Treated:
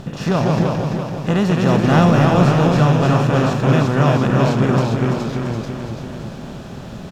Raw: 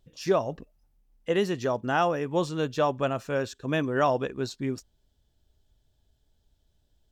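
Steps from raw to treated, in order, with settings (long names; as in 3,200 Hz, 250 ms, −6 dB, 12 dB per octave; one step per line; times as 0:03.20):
compressor on every frequency bin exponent 0.4
low shelf with overshoot 270 Hz +10.5 dB, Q 1.5
0:01.68–0:02.24: leveller curve on the samples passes 1
delay with pitch and tempo change per echo 136 ms, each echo −1 semitone, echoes 2
on a send: repeating echo 337 ms, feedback 56%, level −6 dB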